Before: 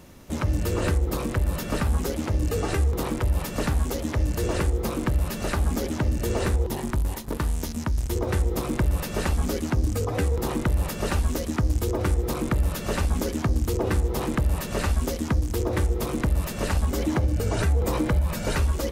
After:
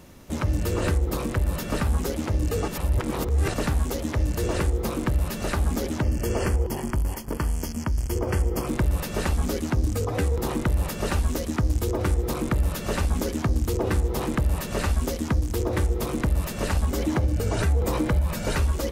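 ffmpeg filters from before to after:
-filter_complex "[0:a]asettb=1/sr,asplit=3[a][b][c];[a]atrim=end=6.024[d];[b]atrim=start=6.02:end=8.67,asetpts=PTS-STARTPTS,afade=t=in:d=0.004:c=qsin,afade=t=out:st=2.646:d=0.004:c=qsin,asuperstop=centerf=3800:order=12:qfactor=4.1[e];[c]atrim=start=8.666[f];[d][e]acrossfade=d=0.004:c1=hsin:c2=qsin[g];[g][f]acrossfade=d=0.004:c1=qsin:c2=hsin,asplit=3[h][i][j];[h]atrim=end=2.682[k];[i]atrim=start=2.678:end=3.542,asetpts=PTS-STARTPTS,areverse[l];[j]atrim=start=3.538[m];[k][l]acrossfade=d=0.004:c1=hsin:c2=hsin[n];[n][m]acrossfade=d=0.004:c1=hsin:c2=hsin"

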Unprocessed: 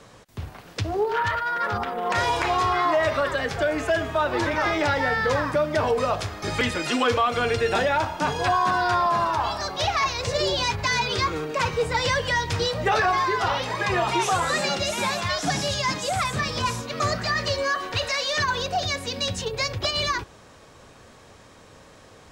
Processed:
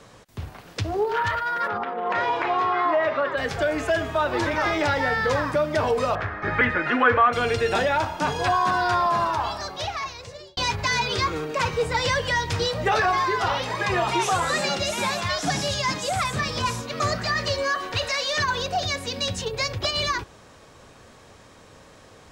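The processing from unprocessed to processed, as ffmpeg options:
-filter_complex "[0:a]asplit=3[a][b][c];[a]afade=t=out:st=1.67:d=0.02[d];[b]highpass=210,lowpass=2.5k,afade=t=in:st=1.67:d=0.02,afade=t=out:st=3.36:d=0.02[e];[c]afade=t=in:st=3.36:d=0.02[f];[d][e][f]amix=inputs=3:normalize=0,asettb=1/sr,asplit=3[g][h][i];[g]atrim=end=6.154[j];[h]atrim=start=6.15:end=7.33,asetpts=PTS-STARTPTS,afade=t=in:d=0.004:c=qsin,afade=t=out:st=1.176:d=0.004:c=qsin,lowpass=f=1.7k:t=q:w=3.2[k];[i]atrim=start=7.326[l];[j][k]acrossfade=d=0.004:c1=hsin:c2=qsin[m];[m][l]acrossfade=d=0.004:c1=qsin:c2=hsin,asplit=2[n][o];[n]atrim=end=10.57,asetpts=PTS-STARTPTS,afade=t=out:st=9.25:d=1.32[p];[o]atrim=start=10.57,asetpts=PTS-STARTPTS,afade=t=in:d=0.004:c=hsin[q];[p][q]concat=n=2:v=0:a=1"

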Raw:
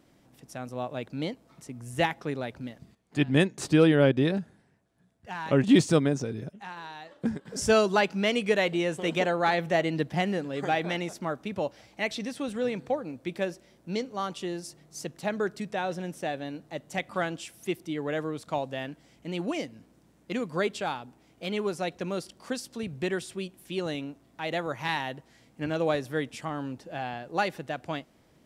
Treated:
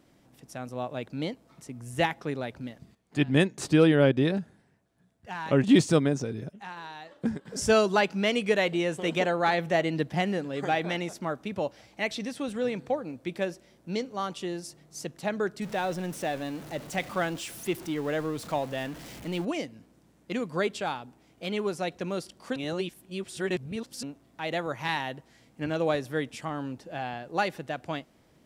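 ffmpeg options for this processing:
-filter_complex "[0:a]asettb=1/sr,asplit=3[a][b][c];[a]atrim=end=15.624[d];[b]atrim=start=15.62:end=19.45,asetpts=PTS-STARTPTS,afade=t=in:d=0.004:c=qsin,afade=t=out:st=3.826:d=0.004:c=qsin,aeval=exprs='val(0)+0.5*0.0106*sgn(val(0))':c=same[e];[c]atrim=start=19.446[f];[d][e]acrossfade=d=0.004:c1=hsin:c2=qsin[g];[g][f]acrossfade=d=0.004:c1=qsin:c2=hsin,asplit=3[h][i][j];[h]atrim=end=22.562[k];[i]atrim=start=22.558:end=24.032,asetpts=PTS-STARTPTS,areverse[l];[j]atrim=start=24.028[m];[k][l]acrossfade=d=0.004:c1=hsin:c2=hsin[n];[n][m]acrossfade=d=0.004:c1=hsin:c2=hsin"

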